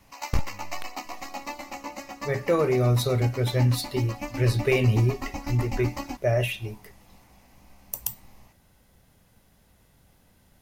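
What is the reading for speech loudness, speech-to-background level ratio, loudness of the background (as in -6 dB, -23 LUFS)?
-26.0 LUFS, 11.0 dB, -37.0 LUFS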